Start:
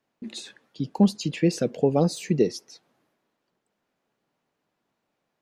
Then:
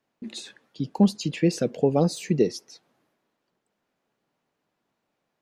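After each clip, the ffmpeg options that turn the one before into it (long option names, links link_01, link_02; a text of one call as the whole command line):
ffmpeg -i in.wav -af anull out.wav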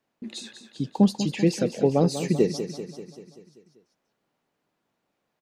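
ffmpeg -i in.wav -af "aecho=1:1:194|388|582|776|970|1164|1358:0.299|0.176|0.104|0.0613|0.0362|0.0213|0.0126" out.wav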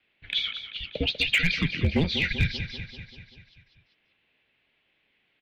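ffmpeg -i in.wav -af "aexciter=amount=6.2:drive=8.4:freq=2300,highpass=frequency=420:width_type=q:width=0.5412,highpass=frequency=420:width_type=q:width=1.307,lowpass=frequency=3300:width_type=q:width=0.5176,lowpass=frequency=3300:width_type=q:width=0.7071,lowpass=frequency=3300:width_type=q:width=1.932,afreqshift=-330,asoftclip=type=hard:threshold=-16.5dB,volume=1.5dB" out.wav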